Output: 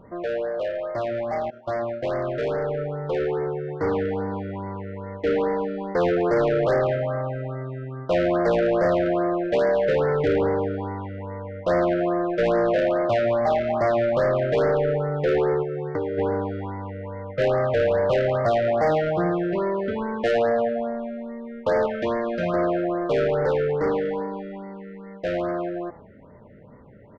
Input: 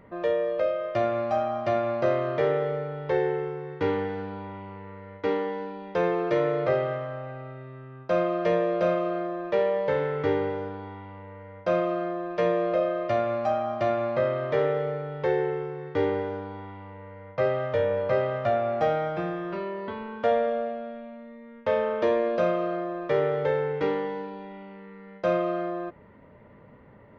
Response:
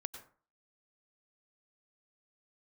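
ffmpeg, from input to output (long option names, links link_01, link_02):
-filter_complex "[0:a]highshelf=frequency=2600:gain=-10,asettb=1/sr,asplit=3[link_01][link_02][link_03];[link_01]atrim=end=1.504[link_04];[link_02]atrim=start=1.5:end=2.19,asetpts=PTS-STARTPTS,afade=type=in:duration=0.004:curve=qsin,afade=type=out:start_time=0.686:duration=0.004:curve=qsin,agate=range=-24dB:threshold=-27dB:ratio=16:detection=peak[link_05];[link_03]atrim=start=2.186[link_06];[link_04][link_05]acrossfade=duration=0.004:curve1=hsin:curve2=qsin[link_07];[link_07][link_06]acrossfade=duration=0.004:curve1=qsin:curve2=hsin,asplit=3[link_08][link_09][link_10];[link_08]afade=type=out:start_time=15.62:duration=0.02[link_11];[link_09]acompressor=threshold=-34dB:ratio=6,afade=type=in:start_time=15.62:duration=0.02,afade=type=out:start_time=16.17:duration=0.02[link_12];[link_10]afade=type=in:start_time=16.17:duration=0.02[link_13];[link_11][link_12][link_13]amix=inputs=3:normalize=0,asettb=1/sr,asplit=3[link_14][link_15][link_16];[link_14]atrim=end=21.864[link_17];[link_15]atrim=start=21.86:end=22.54,asetpts=PTS-STARTPTS,afade=type=in:duration=0.004:curve=qsin,afade=type=out:start_time=0.676:duration=0.004:curve=qsin,equalizer=frequency=490:width_type=o:width=1.3:gain=-12[link_18];[link_16]atrim=start=22.536[link_19];[link_17][link_18]acrossfade=duration=0.004:curve1=hsin:curve2=qsin[link_20];[link_20][link_19]acrossfade=duration=0.004:curve1=qsin:curve2=hsin,asplit=4[link_21][link_22][link_23][link_24];[link_22]adelay=108,afreqshift=150,volume=-22.5dB[link_25];[link_23]adelay=216,afreqshift=300,volume=-30dB[link_26];[link_24]adelay=324,afreqshift=450,volume=-37.6dB[link_27];[link_21][link_25][link_26][link_27]amix=inputs=4:normalize=0,asoftclip=type=tanh:threshold=-27.5dB,dynaudnorm=framelen=600:gausssize=13:maxgain=6dB,afftfilt=real='re*(1-between(b*sr/1024,890*pow(3200/890,0.5+0.5*sin(2*PI*2.4*pts/sr))/1.41,890*pow(3200/890,0.5+0.5*sin(2*PI*2.4*pts/sr))*1.41))':imag='im*(1-between(b*sr/1024,890*pow(3200/890,0.5+0.5*sin(2*PI*2.4*pts/sr))/1.41,890*pow(3200/890,0.5+0.5*sin(2*PI*2.4*pts/sr))*1.41))':win_size=1024:overlap=0.75,volume=4.5dB"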